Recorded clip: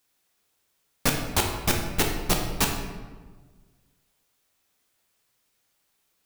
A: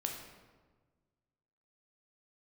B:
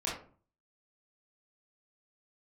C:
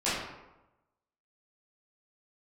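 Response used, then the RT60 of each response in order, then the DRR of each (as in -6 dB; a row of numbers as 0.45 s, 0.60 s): A; 1.4 s, 0.45 s, 1.0 s; 1.0 dB, -7.0 dB, -13.0 dB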